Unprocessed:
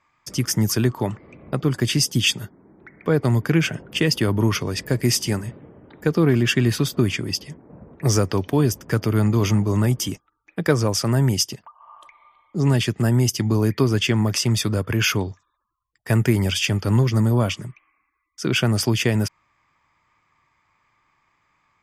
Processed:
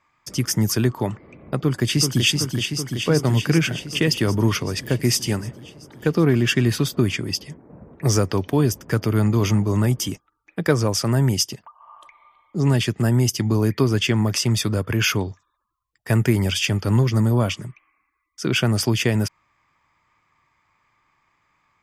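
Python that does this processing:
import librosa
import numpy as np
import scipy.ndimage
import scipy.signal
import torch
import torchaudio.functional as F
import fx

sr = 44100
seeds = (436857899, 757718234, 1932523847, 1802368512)

y = fx.echo_throw(x, sr, start_s=1.58, length_s=0.69, ms=380, feedback_pct=75, wet_db=-5.0)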